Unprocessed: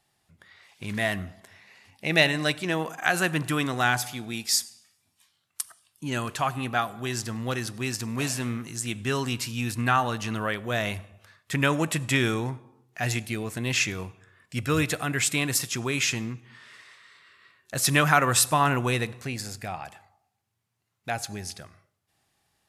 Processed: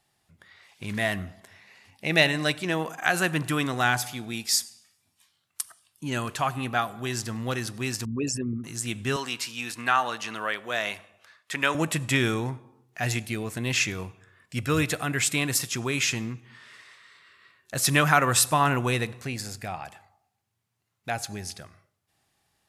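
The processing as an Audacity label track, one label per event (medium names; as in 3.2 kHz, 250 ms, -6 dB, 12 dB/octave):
8.050000	8.640000	resonances exaggerated exponent 3
9.160000	11.750000	frequency weighting A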